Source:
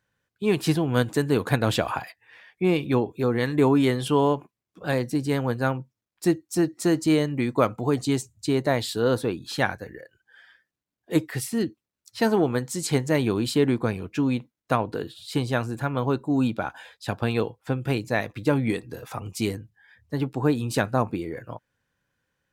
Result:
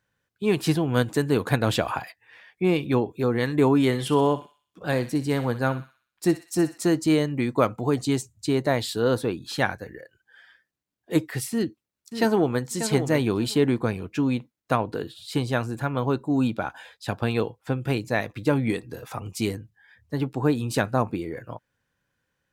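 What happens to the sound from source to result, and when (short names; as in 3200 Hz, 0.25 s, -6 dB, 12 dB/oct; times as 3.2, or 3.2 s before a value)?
3.86–6.78 thinning echo 62 ms, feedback 52%, high-pass 1100 Hz, level -11 dB
11.52–12.63 echo throw 0.59 s, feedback 15%, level -9 dB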